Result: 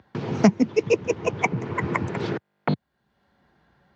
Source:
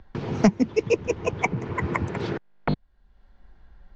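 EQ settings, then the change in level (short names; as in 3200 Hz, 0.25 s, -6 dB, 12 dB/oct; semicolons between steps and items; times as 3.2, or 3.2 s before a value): HPF 100 Hz 24 dB/oct; +1.5 dB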